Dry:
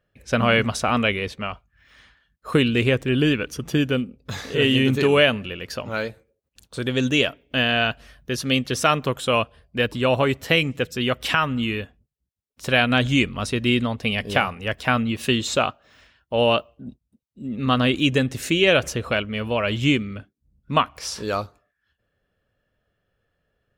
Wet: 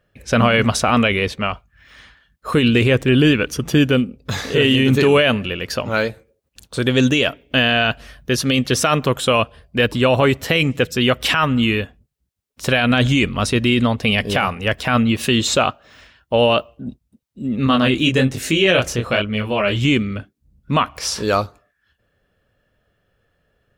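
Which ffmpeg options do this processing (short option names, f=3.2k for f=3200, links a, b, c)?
-filter_complex "[0:a]asettb=1/sr,asplit=3[a][b][c];[a]atrim=end=17.674[d];[b]atrim=start=17.67:end=19.85,asetpts=PTS-STARTPTS,afade=t=in:d=0.004:c=qsin,afade=t=out:st=2.176:d=0.004:c=qsin,flanger=delay=19:depth=6.4:speed=1.2[e];[c]atrim=start=19.846[f];[d][e]acrossfade=d=0.004:c1=hsin:c2=qsin[g];[g][f]acrossfade=d=0.004:c1=qsin:c2=hsin,alimiter=limit=-13dB:level=0:latency=1:release=15,volume=7.5dB"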